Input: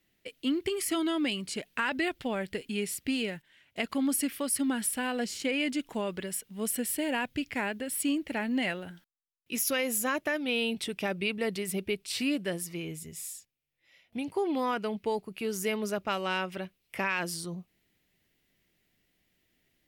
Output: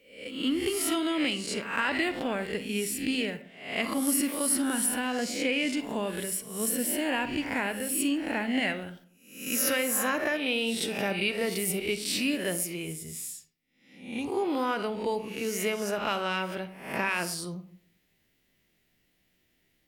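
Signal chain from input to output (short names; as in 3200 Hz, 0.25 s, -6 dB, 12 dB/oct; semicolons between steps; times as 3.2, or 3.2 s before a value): spectral swells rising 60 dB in 0.59 s; 10.67–12.93 high shelf 7600 Hz +5.5 dB; reverb RT60 0.55 s, pre-delay 37 ms, DRR 10.5 dB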